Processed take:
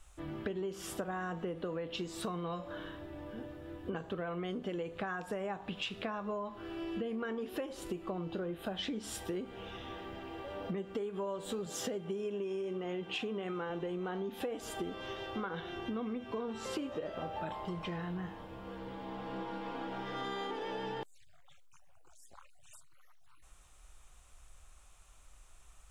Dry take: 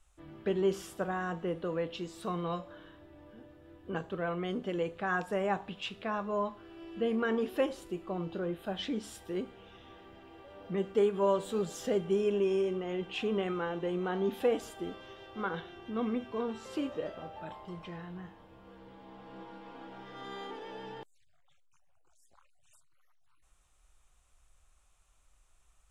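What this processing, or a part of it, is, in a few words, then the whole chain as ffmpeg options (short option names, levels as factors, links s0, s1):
serial compression, leveller first: -filter_complex "[0:a]acompressor=threshold=0.0178:ratio=2.5,acompressor=threshold=0.00631:ratio=6,asettb=1/sr,asplit=3[s0][s1][s2];[s0]atrim=end=11.664[s3];[s1]atrim=start=11.66:end=13.7,asetpts=PTS-STARTPTS,afade=t=in:d=0.004:c=qsin,afade=t=out:st=2.036:d=0.004:c=qsin,highpass=93[s4];[s2]atrim=start=13.696[s5];[s3][s4]acrossfade=d=0.004:c1=hsin:c2=qsin[s6];[s6][s5]acrossfade=d=0.004:c1=qsin:c2=hsin,volume=2.66"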